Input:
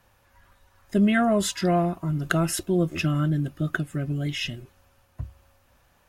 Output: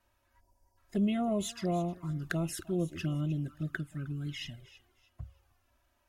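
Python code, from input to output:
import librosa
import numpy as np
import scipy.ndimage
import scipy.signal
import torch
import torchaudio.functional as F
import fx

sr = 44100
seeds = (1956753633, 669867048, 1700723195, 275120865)

y = fx.spec_erase(x, sr, start_s=0.4, length_s=0.37, low_hz=1000.0, high_hz=4500.0)
y = fx.echo_thinned(y, sr, ms=310, feedback_pct=29, hz=610.0, wet_db=-16)
y = fx.env_flanger(y, sr, rest_ms=3.2, full_db=-19.5)
y = y * 10.0 ** (-8.5 / 20.0)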